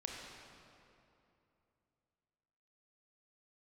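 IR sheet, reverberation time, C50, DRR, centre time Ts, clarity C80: 2.8 s, 0.0 dB, -1.0 dB, 114 ms, 1.5 dB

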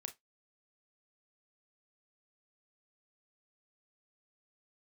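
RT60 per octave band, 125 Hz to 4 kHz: 0.15 s, 0.15 s, 0.15 s, 0.15 s, 0.15 s, 0.15 s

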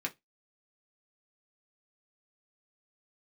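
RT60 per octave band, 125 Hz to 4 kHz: 0.20 s, 0.15 s, 0.15 s, 0.15 s, 0.15 s, 0.15 s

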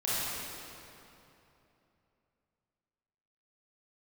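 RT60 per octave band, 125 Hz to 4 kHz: 3.5 s, 3.3 s, 3.1 s, 2.9 s, 2.5 s, 2.2 s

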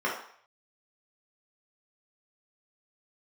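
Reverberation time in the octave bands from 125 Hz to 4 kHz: 0.60 s, 0.40 s, 0.55 s, 0.60 s, 0.60 s, 0.55 s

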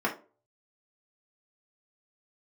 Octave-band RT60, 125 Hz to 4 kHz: 0.45 s, 0.40 s, 0.40 s, 0.30 s, 0.25 s, 0.20 s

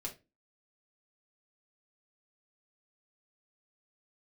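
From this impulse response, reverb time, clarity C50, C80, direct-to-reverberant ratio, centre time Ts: 0.25 s, 13.0 dB, 20.5 dB, -2.0 dB, 12 ms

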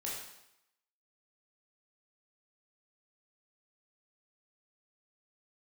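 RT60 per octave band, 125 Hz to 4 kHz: 0.75 s, 0.75 s, 0.80 s, 0.85 s, 0.80 s, 0.80 s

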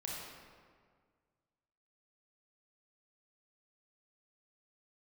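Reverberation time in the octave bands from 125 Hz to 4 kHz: 2.2 s, 2.0 s, 1.9 s, 1.8 s, 1.5 s, 1.1 s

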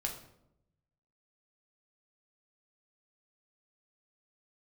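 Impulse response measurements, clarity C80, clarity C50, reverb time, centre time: 11.0 dB, 8.0 dB, 0.80 s, 21 ms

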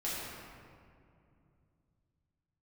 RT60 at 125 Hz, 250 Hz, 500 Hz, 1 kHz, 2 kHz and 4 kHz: 4.4 s, 3.4 s, 2.7 s, 2.3 s, 1.8 s, 1.2 s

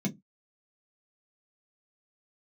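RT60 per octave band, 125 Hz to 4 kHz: 0.25 s, 0.25 s, 0.15 s, 0.10 s, 0.10 s, 0.10 s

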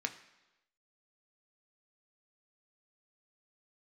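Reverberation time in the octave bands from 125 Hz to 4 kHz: 0.90 s, 0.95 s, 1.0 s, 1.0 s, 1.0 s, 1.0 s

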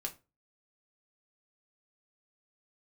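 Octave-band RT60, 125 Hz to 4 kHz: 0.40 s, 0.35 s, 0.30 s, 0.25 s, 0.25 s, 0.20 s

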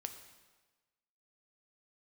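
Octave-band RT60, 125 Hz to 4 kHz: 1.2 s, 1.2 s, 1.3 s, 1.3 s, 1.2 s, 1.1 s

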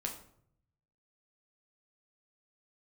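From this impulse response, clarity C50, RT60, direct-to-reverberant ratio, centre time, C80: 8.5 dB, 0.65 s, 0.5 dB, 20 ms, 12.0 dB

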